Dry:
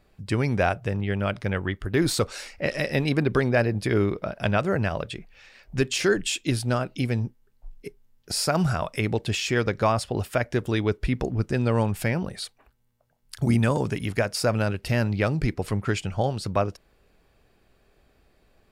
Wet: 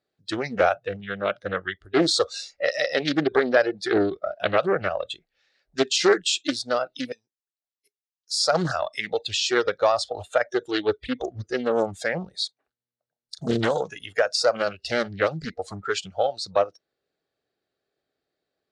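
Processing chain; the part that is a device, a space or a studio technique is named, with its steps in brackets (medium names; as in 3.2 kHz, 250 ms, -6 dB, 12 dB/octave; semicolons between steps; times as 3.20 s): spectral noise reduction 20 dB; 7.12–8.40 s: differentiator; full-range speaker at full volume (loudspeaker Doppler distortion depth 0.85 ms; cabinet simulation 200–7200 Hz, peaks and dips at 210 Hz -9 dB, 990 Hz -9 dB, 2.5 kHz -7 dB, 4 kHz +5 dB); trim +5 dB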